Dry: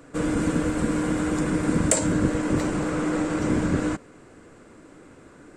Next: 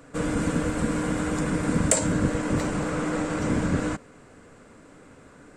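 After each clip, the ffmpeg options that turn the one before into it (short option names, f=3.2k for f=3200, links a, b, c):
-af "equalizer=f=340:t=o:w=0.28:g=-8.5"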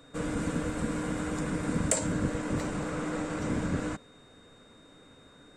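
-af "aeval=exprs='val(0)+0.002*sin(2*PI*3700*n/s)':c=same,volume=-6dB"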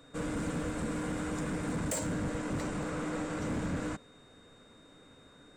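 -af "asoftclip=type=hard:threshold=-27.5dB,volume=-2dB"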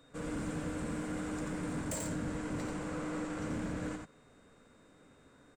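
-af "aecho=1:1:88:0.631,volume=-5dB"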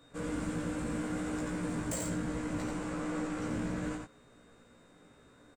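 -filter_complex "[0:a]asplit=2[a][b];[b]adelay=17,volume=-3dB[c];[a][c]amix=inputs=2:normalize=0"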